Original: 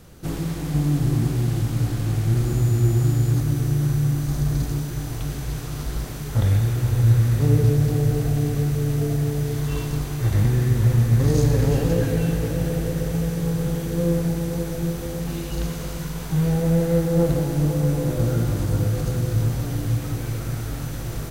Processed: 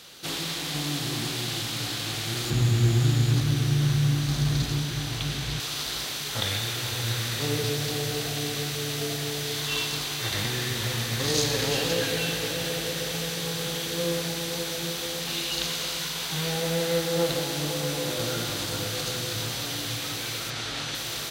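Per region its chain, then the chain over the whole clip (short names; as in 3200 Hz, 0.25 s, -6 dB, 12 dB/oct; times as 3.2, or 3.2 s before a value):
2.5–5.6 tone controls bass +13 dB, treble -4 dB + Doppler distortion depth 0.15 ms
20.5–20.95 air absorption 60 m + fast leveller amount 50%
whole clip: HPF 890 Hz 6 dB/oct; bell 3700 Hz +13 dB 1.3 oct; gain +2.5 dB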